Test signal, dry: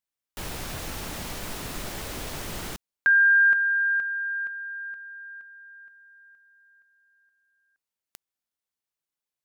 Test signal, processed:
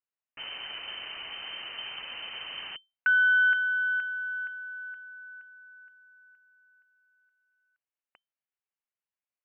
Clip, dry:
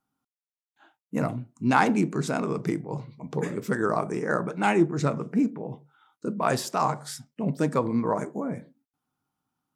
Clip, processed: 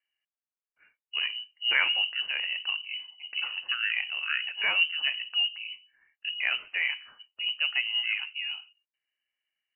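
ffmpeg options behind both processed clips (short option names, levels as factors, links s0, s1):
-af "aeval=exprs='0.473*(cos(1*acos(clip(val(0)/0.473,-1,1)))-cos(1*PI/2))+0.015*(cos(4*acos(clip(val(0)/0.473,-1,1)))-cos(4*PI/2))':c=same,lowpass=f=2600:t=q:w=0.5098,lowpass=f=2600:t=q:w=0.6013,lowpass=f=2600:t=q:w=0.9,lowpass=f=2600:t=q:w=2.563,afreqshift=-3100,volume=0.631"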